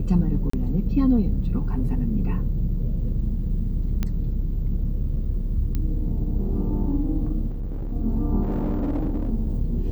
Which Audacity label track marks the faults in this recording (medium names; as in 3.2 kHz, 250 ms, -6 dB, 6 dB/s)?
0.500000	0.530000	dropout 34 ms
4.030000	4.030000	pop -13 dBFS
5.750000	5.750000	pop -15 dBFS
7.490000	7.930000	clipped -26 dBFS
8.420000	9.300000	clipped -20.5 dBFS